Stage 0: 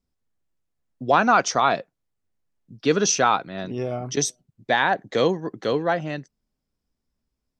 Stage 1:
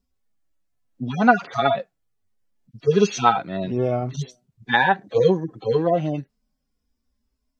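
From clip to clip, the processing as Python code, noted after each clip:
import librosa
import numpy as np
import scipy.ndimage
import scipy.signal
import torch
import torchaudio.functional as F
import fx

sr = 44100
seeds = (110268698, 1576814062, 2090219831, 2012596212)

y = fx.hpss_only(x, sr, part='harmonic')
y = y * librosa.db_to_amplitude(6.0)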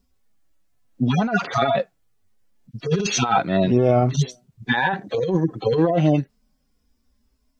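y = fx.over_compress(x, sr, threshold_db=-23.0, ratio=-1.0)
y = y * librosa.db_to_amplitude(4.5)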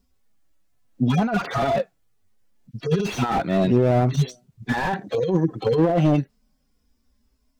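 y = fx.slew_limit(x, sr, full_power_hz=86.0)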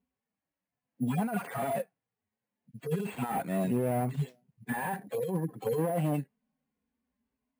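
y = scipy.ndimage.median_filter(x, 9, mode='constant')
y = fx.cabinet(y, sr, low_hz=160.0, low_slope=12, high_hz=6200.0, hz=(340.0, 610.0, 1300.0, 3600.0), db=(-10, -4, -7, -6))
y = np.repeat(scipy.signal.resample_poly(y, 1, 4), 4)[:len(y)]
y = y * librosa.db_to_amplitude(-7.0)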